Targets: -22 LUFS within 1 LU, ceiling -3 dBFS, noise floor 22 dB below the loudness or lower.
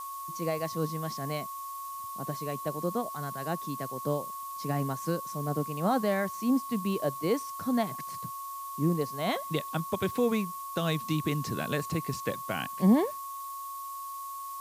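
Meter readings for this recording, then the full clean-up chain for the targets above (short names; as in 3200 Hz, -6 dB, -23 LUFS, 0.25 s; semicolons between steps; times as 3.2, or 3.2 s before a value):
steady tone 1100 Hz; tone level -37 dBFS; noise floor -40 dBFS; noise floor target -54 dBFS; loudness -31.5 LUFS; peak -13.0 dBFS; loudness target -22.0 LUFS
-> notch 1100 Hz, Q 30; denoiser 14 dB, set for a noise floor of -40 dBFS; gain +9.5 dB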